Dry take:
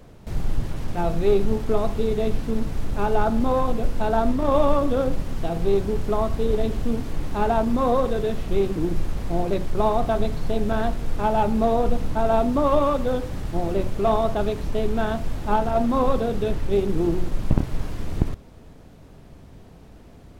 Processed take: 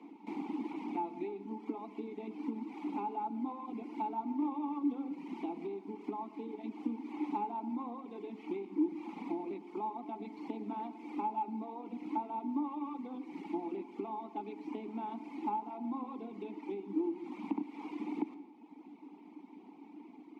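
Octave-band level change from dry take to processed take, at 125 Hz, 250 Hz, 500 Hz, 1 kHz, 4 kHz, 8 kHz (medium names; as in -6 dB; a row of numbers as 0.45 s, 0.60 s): under -30 dB, -11.0 dB, -22.0 dB, -13.0 dB, under -20 dB, no reading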